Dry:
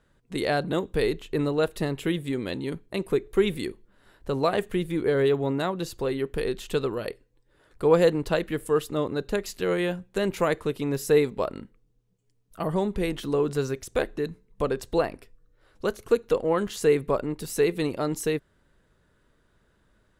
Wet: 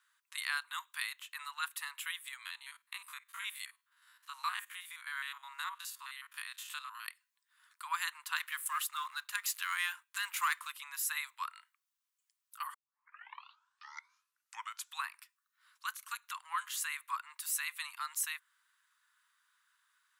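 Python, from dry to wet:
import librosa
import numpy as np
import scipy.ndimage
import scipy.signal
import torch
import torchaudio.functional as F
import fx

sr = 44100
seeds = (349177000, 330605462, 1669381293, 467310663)

y = fx.spec_steps(x, sr, hold_ms=50, at=(2.42, 7.03), fade=0.02)
y = fx.leveller(y, sr, passes=1, at=(8.36, 10.72))
y = fx.edit(y, sr, fx.tape_start(start_s=12.74, length_s=2.38), tone=tone)
y = fx.dynamic_eq(y, sr, hz=4900.0, q=1.4, threshold_db=-50.0, ratio=4.0, max_db=-5)
y = scipy.signal.sosfilt(scipy.signal.butter(12, 1000.0, 'highpass', fs=sr, output='sos'), y)
y = fx.high_shelf(y, sr, hz=8100.0, db=9.5)
y = y * 10.0 ** (-3.0 / 20.0)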